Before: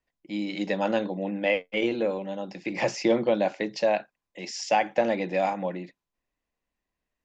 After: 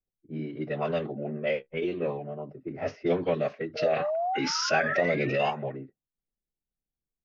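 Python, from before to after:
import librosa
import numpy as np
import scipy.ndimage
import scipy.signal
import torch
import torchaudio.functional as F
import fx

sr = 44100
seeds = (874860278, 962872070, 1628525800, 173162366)

y = fx.spec_paint(x, sr, seeds[0], shape='rise', start_s=3.75, length_s=1.76, low_hz=600.0, high_hz=3000.0, level_db=-25.0)
y = fx.pitch_keep_formants(y, sr, semitones=-5.0)
y = fx.env_lowpass(y, sr, base_hz=310.0, full_db=-19.0)
y = y * 10.0 ** (-3.0 / 20.0)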